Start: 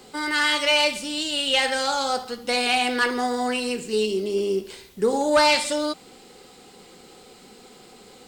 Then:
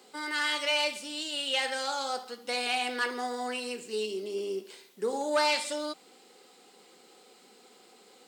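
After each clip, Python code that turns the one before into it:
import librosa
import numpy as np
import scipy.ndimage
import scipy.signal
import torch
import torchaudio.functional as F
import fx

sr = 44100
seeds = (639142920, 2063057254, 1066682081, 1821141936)

y = scipy.signal.sosfilt(scipy.signal.bessel(4, 300.0, 'highpass', norm='mag', fs=sr, output='sos'), x)
y = F.gain(torch.from_numpy(y), -8.0).numpy()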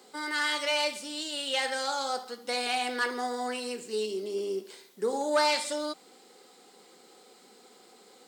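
y = fx.peak_eq(x, sr, hz=2700.0, db=-5.0, octaves=0.46)
y = F.gain(torch.from_numpy(y), 1.5).numpy()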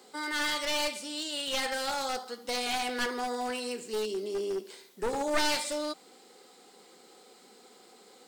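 y = np.minimum(x, 2.0 * 10.0 ** (-28.0 / 20.0) - x)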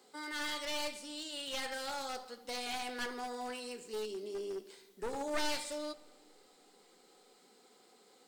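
y = fx.room_shoebox(x, sr, seeds[0], volume_m3=2400.0, walls='mixed', distance_m=0.3)
y = F.gain(torch.from_numpy(y), -8.0).numpy()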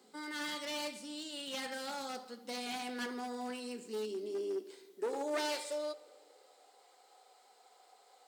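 y = fx.filter_sweep_highpass(x, sr, from_hz=200.0, to_hz=700.0, start_s=3.56, end_s=6.96, q=3.0)
y = F.gain(torch.from_numpy(y), -2.0).numpy()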